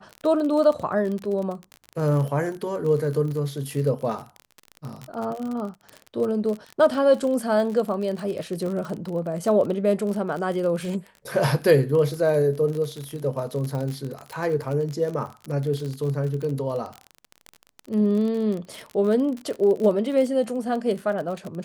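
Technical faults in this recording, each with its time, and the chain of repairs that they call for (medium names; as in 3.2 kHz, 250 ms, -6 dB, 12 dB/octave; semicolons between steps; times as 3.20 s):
crackle 37 per s -28 dBFS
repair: de-click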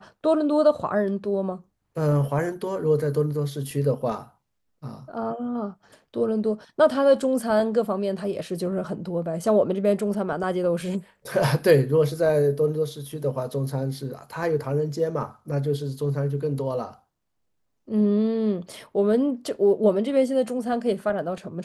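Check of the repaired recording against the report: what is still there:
nothing left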